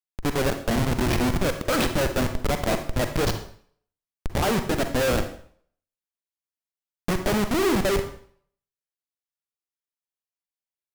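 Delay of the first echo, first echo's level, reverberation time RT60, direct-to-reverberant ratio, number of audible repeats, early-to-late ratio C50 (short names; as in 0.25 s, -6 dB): none, none, 0.55 s, 7.0 dB, none, 9.0 dB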